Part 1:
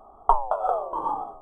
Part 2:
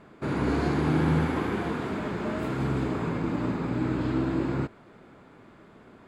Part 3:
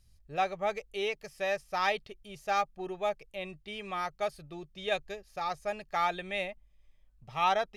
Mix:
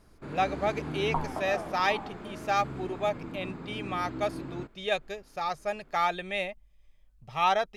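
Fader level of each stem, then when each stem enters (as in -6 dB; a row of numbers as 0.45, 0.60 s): -12.0, -11.5, +2.5 dB; 0.85, 0.00, 0.00 s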